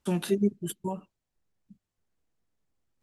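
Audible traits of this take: noise floor -86 dBFS; spectral tilt -6.0 dB/oct

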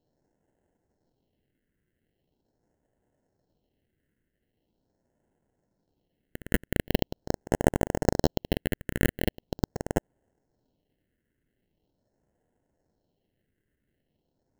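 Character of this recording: aliases and images of a low sample rate 1200 Hz, jitter 0%; phasing stages 4, 0.42 Hz, lowest notch 800–4300 Hz

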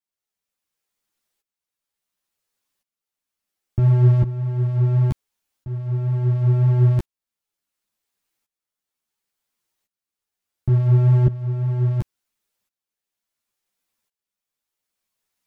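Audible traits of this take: tremolo saw up 0.71 Hz, depth 85%; a shimmering, thickened sound

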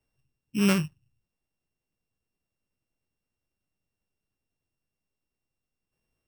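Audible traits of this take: a buzz of ramps at a fixed pitch in blocks of 16 samples

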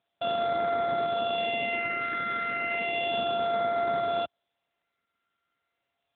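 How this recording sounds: a buzz of ramps at a fixed pitch in blocks of 64 samples; phasing stages 6, 0.33 Hz, lowest notch 790–2700 Hz; AMR-NB

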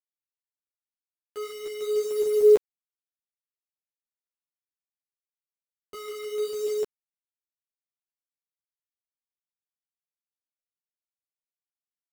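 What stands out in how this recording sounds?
tremolo saw up 1.8 Hz, depth 40%; a quantiser's noise floor 6-bit, dither none; a shimmering, thickened sound

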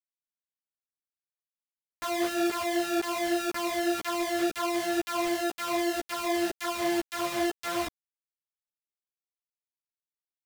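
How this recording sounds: a buzz of ramps at a fixed pitch in blocks of 128 samples; tremolo saw up 2 Hz, depth 55%; a quantiser's noise floor 6-bit, dither none; a shimmering, thickened sound

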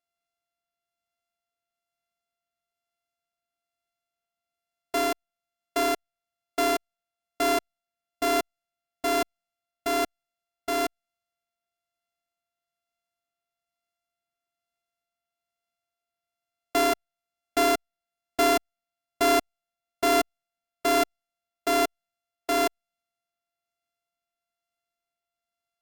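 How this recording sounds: a buzz of ramps at a fixed pitch in blocks of 64 samples; tremolo triangle 1.1 Hz, depth 35%; Opus

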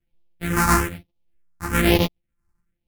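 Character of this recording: a buzz of ramps at a fixed pitch in blocks of 256 samples; phasing stages 4, 1.1 Hz, lowest notch 530–1500 Hz; tremolo triangle 1.7 Hz, depth 60%; a shimmering, thickened sound

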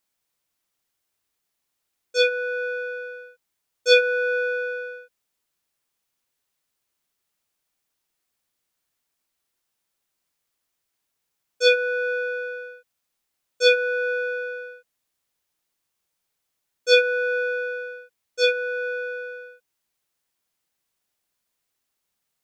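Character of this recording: noise floor -79 dBFS; spectral tilt -7.0 dB/oct

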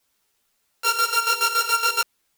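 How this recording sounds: a buzz of ramps at a fixed pitch in blocks of 32 samples; chopped level 7.1 Hz, depth 65%, duty 45%; a quantiser's noise floor 12-bit, dither triangular; a shimmering, thickened sound

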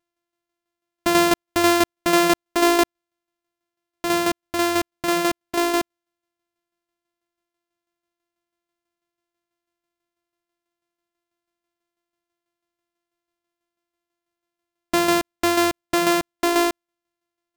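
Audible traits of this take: a buzz of ramps at a fixed pitch in blocks of 128 samples; tremolo saw down 6.1 Hz, depth 55%

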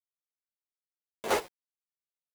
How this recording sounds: a quantiser's noise floor 6-bit, dither none; chopped level 3.1 Hz, depth 65%, duty 30%; a shimmering, thickened sound

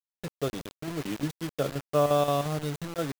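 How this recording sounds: chopped level 5.7 Hz, depth 60%, duty 75%; a quantiser's noise floor 6-bit, dither none

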